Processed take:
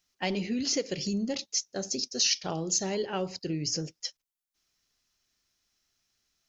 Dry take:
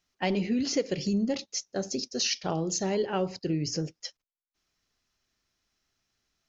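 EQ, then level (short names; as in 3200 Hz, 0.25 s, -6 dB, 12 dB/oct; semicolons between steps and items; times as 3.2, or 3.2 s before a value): high shelf 3200 Hz +9.5 dB; -3.5 dB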